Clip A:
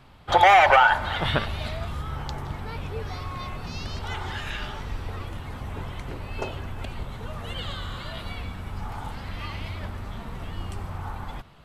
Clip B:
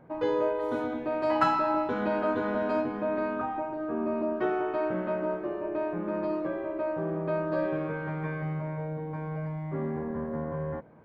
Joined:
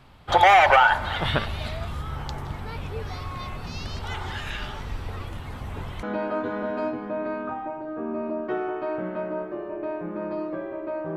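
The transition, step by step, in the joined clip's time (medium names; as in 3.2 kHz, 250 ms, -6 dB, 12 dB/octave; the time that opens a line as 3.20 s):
clip A
6.03 s: go over to clip B from 1.95 s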